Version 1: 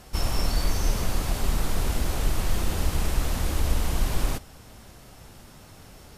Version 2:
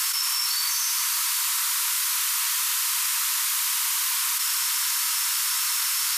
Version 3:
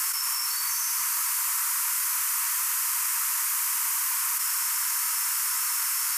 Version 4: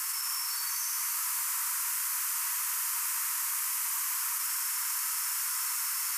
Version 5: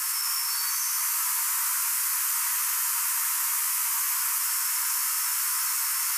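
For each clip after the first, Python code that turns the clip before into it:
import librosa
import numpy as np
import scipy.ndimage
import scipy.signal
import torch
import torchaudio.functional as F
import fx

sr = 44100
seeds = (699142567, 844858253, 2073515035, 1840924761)

y1 = scipy.signal.sosfilt(scipy.signal.cheby1(10, 1.0, 930.0, 'highpass', fs=sr, output='sos'), x)
y1 = fx.tilt_eq(y1, sr, slope=3.5)
y1 = fx.env_flatten(y1, sr, amount_pct=100)
y2 = fx.peak_eq(y1, sr, hz=3700.0, db=-14.0, octaves=0.86)
y3 = y2 + 10.0 ** (-4.0 / 20.0) * np.pad(y2, (int(89 * sr / 1000.0), 0))[:len(y2)]
y3 = y3 * librosa.db_to_amplitude(-6.5)
y4 = fx.doubler(y3, sr, ms=15.0, db=-5.0)
y4 = y4 * librosa.db_to_amplitude(4.0)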